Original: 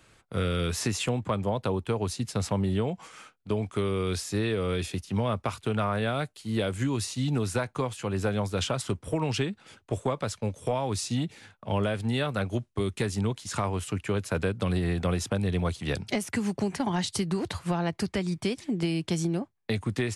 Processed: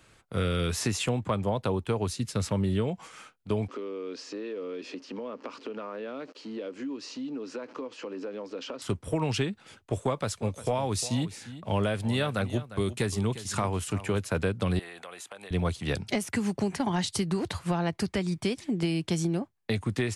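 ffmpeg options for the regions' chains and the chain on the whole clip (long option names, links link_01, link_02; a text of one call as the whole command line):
ffmpeg -i in.wav -filter_complex "[0:a]asettb=1/sr,asplit=3[link_01][link_02][link_03];[link_01]atrim=end=2.074[link_04];[link_02]atrim=start=2.07:end=2.88,asetpts=PTS-STARTPTS,afade=type=in:duration=0.004:curve=qsin,afade=type=out:start_time=0.806:duration=0.004:curve=qsin,deesser=0.6,equalizer=frequency=750:width_type=o:width=0.2:gain=-11.5,bandreject=frequency=1000:width=22[link_05];[link_03]atrim=start=2.876[link_06];[link_04][link_05]acrossfade=duration=0.004:curve1=hsin:curve2=qsin[link_07];[link_07][link_06]acrossfade=duration=0.004:curve1=qsin:curve2=hsin,asettb=1/sr,asplit=3[link_08][link_09][link_10];[link_08]atrim=end=3.684[link_11];[link_09]atrim=start=3.68:end=8.82,asetpts=PTS-STARTPTS,afade=type=in:duration=0.004:curve=qsin,afade=type=out:start_time=5.136:duration=0.004:curve=qsin,aeval=exprs='val(0)+0.5*0.00891*sgn(val(0))':channel_layout=same,highpass=frequency=260:width=0.5412,highpass=frequency=260:width=1.3066,equalizer=frequency=270:width_type=q:width=4:gain=10,equalizer=frequency=490:width_type=q:width=4:gain=7,equalizer=frequency=740:width_type=q:width=4:gain=-8,equalizer=frequency=1500:width_type=q:width=4:gain=-4,equalizer=frequency=2100:width_type=q:width=4:gain=-5,equalizer=frequency=3600:width_type=q:width=4:gain=-10,lowpass=frequency=4900:width=0.5412,lowpass=frequency=4900:width=1.3066,acompressor=threshold=-36dB:ratio=3:attack=3.2:release=140:knee=1:detection=peak[link_12];[link_10]atrim=start=8.816[link_13];[link_11][link_12]acrossfade=duration=0.004:curve1=hsin:curve2=qsin[link_14];[link_14][link_13]acrossfade=duration=0.004:curve1=qsin:curve2=hsin,asettb=1/sr,asplit=3[link_15][link_16][link_17];[link_15]atrim=end=10.024[link_18];[link_16]atrim=start=10.02:end=14.19,asetpts=PTS-STARTPTS,afade=type=in:duration=0.004:curve=qsin,afade=type=out:start_time=4.166:duration=0.004:curve=qsin,highshelf=frequency=8200:gain=4.5,aecho=1:1:353:0.188,atrim=end_sample=183897[link_19];[link_17]atrim=start=14.186[link_20];[link_18][link_19]acrossfade=duration=0.004:curve1=hsin:curve2=qsin[link_21];[link_21][link_20]acrossfade=duration=0.004:curve1=qsin:curve2=hsin,asettb=1/sr,asplit=3[link_22][link_23][link_24];[link_22]atrim=end=14.794[link_25];[link_23]atrim=start=14.79:end=15.51,asetpts=PTS-STARTPTS,afade=type=in:duration=0.004:curve=qsin,afade=type=out:start_time=0.716:duration=0.004:curve=qsin,highpass=690,equalizer=frequency=5300:width_type=o:width=0.35:gain=-10.5,acompressor=threshold=-40dB:ratio=4:attack=3.2:release=140:knee=1:detection=peak[link_26];[link_24]atrim=start=15.506[link_27];[link_25][link_26]acrossfade=duration=0.004:curve1=hsin:curve2=qsin[link_28];[link_28][link_27]acrossfade=duration=0.004:curve1=qsin:curve2=hsin" out.wav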